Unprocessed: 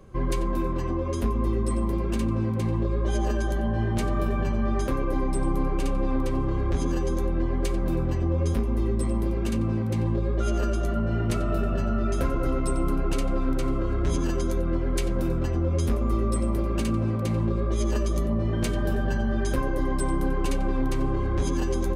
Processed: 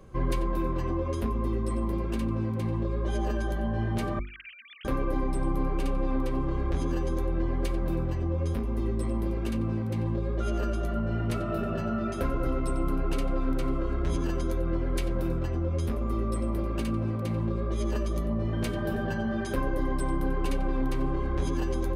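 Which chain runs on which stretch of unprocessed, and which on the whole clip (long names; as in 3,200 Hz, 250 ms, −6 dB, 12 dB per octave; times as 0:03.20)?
0:04.19–0:04.85: three sine waves on the formant tracks + inverse Chebyshev high-pass filter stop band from 990 Hz, stop band 50 dB
whole clip: mains-hum notches 50/100/150/200/250/300/350/400 Hz; dynamic equaliser 7,100 Hz, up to −7 dB, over −56 dBFS, Q 1.3; speech leveller 0.5 s; level −2.5 dB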